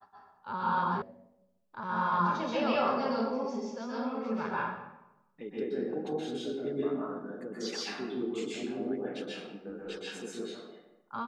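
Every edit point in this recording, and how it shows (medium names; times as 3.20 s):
1.02 s: sound stops dead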